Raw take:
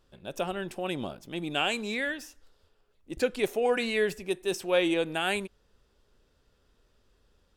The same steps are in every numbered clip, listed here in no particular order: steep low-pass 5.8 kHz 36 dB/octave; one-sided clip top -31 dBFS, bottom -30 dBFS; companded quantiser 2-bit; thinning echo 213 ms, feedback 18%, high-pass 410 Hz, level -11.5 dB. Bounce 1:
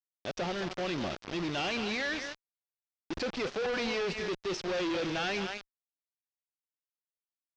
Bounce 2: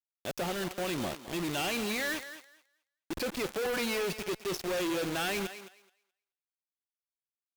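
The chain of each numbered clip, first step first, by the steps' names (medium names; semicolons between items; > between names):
thinning echo > companded quantiser > one-sided clip > steep low-pass; steep low-pass > companded quantiser > one-sided clip > thinning echo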